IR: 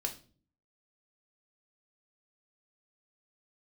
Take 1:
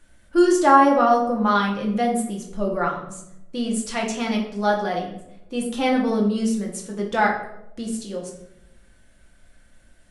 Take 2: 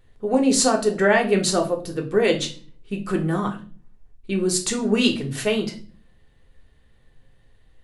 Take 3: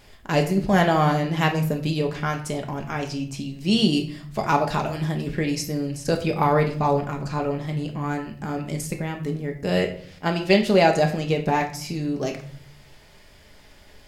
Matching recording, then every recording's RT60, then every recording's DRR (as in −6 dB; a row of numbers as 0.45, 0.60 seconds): 2; 0.85, 0.40, 0.55 seconds; −1.0, 2.0, 2.5 decibels